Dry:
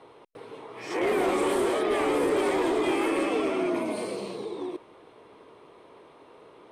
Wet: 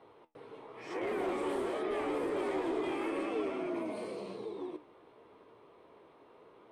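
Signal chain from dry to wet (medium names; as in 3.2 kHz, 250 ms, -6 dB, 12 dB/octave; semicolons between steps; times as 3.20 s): treble shelf 4.3 kHz -9 dB; in parallel at -2 dB: peak limiter -26.5 dBFS, peak gain reduction 7 dB; on the sum: flange 0.9 Hz, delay 8.5 ms, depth 7.6 ms, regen +67%; trim -7.5 dB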